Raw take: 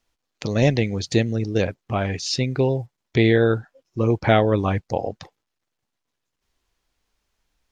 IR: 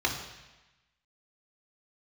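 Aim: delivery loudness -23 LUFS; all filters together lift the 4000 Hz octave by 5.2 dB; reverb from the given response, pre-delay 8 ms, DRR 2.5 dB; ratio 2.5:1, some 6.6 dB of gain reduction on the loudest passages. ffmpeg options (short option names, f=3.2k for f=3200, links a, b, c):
-filter_complex "[0:a]equalizer=f=4k:t=o:g=6.5,acompressor=threshold=-21dB:ratio=2.5,asplit=2[a][b];[1:a]atrim=start_sample=2205,adelay=8[c];[b][c]afir=irnorm=-1:irlink=0,volume=-13dB[d];[a][d]amix=inputs=2:normalize=0,volume=-0.5dB"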